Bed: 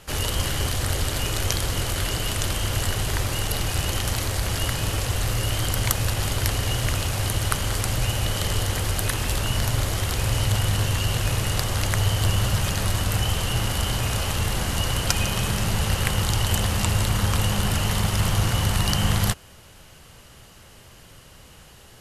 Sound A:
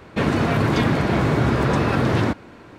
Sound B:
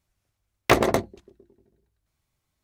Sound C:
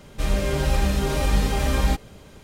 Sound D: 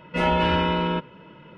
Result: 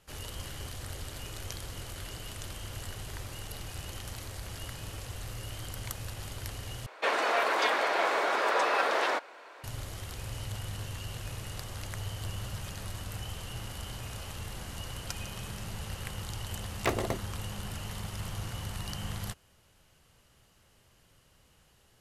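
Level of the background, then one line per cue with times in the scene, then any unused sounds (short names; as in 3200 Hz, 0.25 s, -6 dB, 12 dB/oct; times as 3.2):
bed -16 dB
6.86 replace with A -2 dB + HPF 530 Hz 24 dB/oct
16.16 add B -11.5 dB
not used: C, D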